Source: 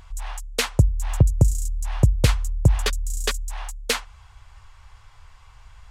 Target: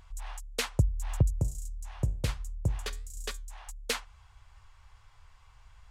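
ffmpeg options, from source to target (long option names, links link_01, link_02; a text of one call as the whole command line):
ffmpeg -i in.wav -filter_complex "[0:a]asplit=3[link_01][link_02][link_03];[link_01]afade=type=out:start_time=1.39:duration=0.02[link_04];[link_02]flanger=delay=9:depth=6.6:regen=-78:speed=1.2:shape=sinusoidal,afade=type=in:start_time=1.39:duration=0.02,afade=type=out:start_time=3.67:duration=0.02[link_05];[link_03]afade=type=in:start_time=3.67:duration=0.02[link_06];[link_04][link_05][link_06]amix=inputs=3:normalize=0,volume=-8.5dB" out.wav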